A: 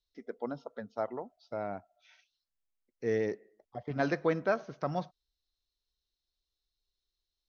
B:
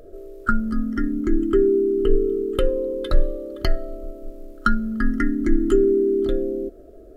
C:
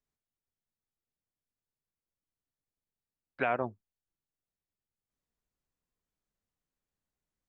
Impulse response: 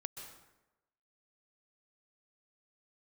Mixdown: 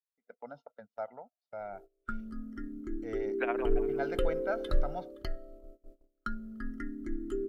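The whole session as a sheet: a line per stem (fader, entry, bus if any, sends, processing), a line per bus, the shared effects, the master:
-8.0 dB, 0.00 s, no send, no echo send, comb 1.4 ms, depth 80%; gate with hold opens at -53 dBFS; tone controls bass -8 dB, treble -7 dB
3.20 s -18 dB -> 3.76 s -10 dB -> 4.71 s -10 dB -> 5.44 s -18 dB, 1.60 s, no send, no echo send, none
-1.0 dB, 0.00 s, no send, echo send -13 dB, inverse Chebyshev high-pass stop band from 180 Hz; tremolo 14 Hz, depth 83%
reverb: none
echo: feedback delay 172 ms, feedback 42%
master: gate -50 dBFS, range -22 dB

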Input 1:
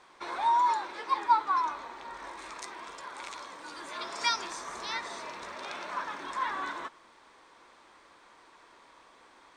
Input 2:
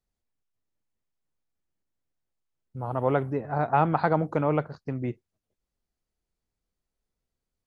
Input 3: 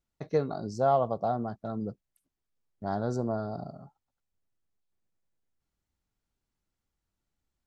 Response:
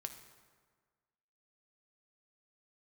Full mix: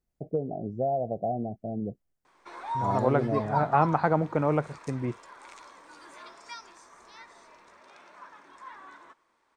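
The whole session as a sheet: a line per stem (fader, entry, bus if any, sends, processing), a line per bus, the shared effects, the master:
6.18 s -6 dB -> 6.45 s -13 dB, 2.25 s, no send, none
-0.5 dB, 0.00 s, no send, none
+2.0 dB, 0.00 s, no send, elliptic low-pass 730 Hz, stop band 40 dB; compression, threshold -26 dBFS, peak gain reduction 5.5 dB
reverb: none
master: peaking EQ 3.7 kHz -5 dB 0.79 oct

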